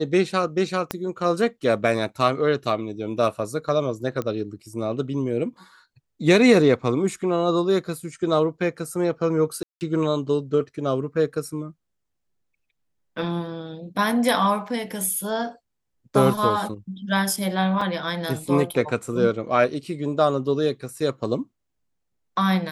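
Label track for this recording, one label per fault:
0.910000	0.910000	pop -9 dBFS
4.220000	4.220000	pop -16 dBFS
9.630000	9.810000	gap 0.179 s
17.810000	17.810000	gap 4.2 ms

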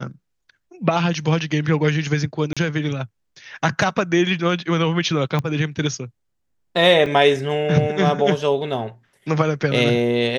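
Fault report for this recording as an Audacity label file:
2.530000	2.570000	gap 36 ms
5.390000	5.390000	pop -11 dBFS
7.060000	7.060000	gap 2.5 ms

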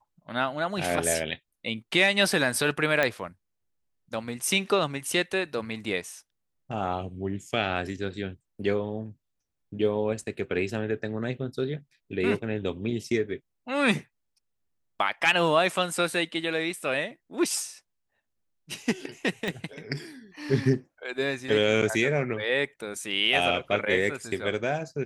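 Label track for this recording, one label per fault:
3.030000	3.030000	pop -10 dBFS
19.480000	19.480000	pop

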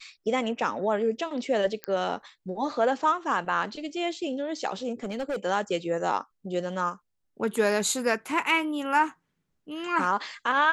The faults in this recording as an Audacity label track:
1.840000	1.840000	pop -16 dBFS
5.030000	5.360000	clipped -26.5 dBFS

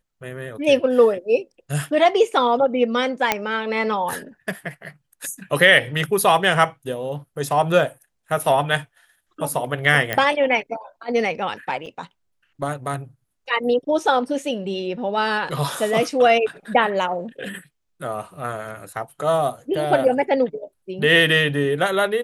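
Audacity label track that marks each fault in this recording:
3.320000	3.320000	pop -2 dBFS
10.130000	10.130000	pop -8 dBFS
11.860000	11.860000	gap 3.7 ms

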